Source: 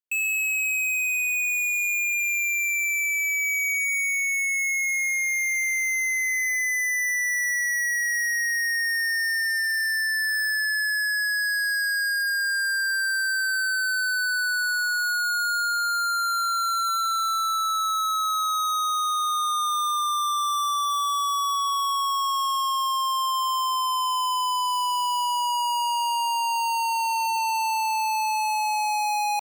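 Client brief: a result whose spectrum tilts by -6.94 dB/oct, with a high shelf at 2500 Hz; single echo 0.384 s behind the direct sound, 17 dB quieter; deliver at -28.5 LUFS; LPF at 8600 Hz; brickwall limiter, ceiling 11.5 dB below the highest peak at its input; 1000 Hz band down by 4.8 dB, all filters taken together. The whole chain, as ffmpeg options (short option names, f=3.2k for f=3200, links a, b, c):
-af "lowpass=8.6k,equalizer=f=1k:t=o:g=-7,highshelf=f=2.5k:g=5.5,alimiter=level_in=5.5dB:limit=-24dB:level=0:latency=1,volume=-5.5dB,aecho=1:1:384:0.141,volume=5dB"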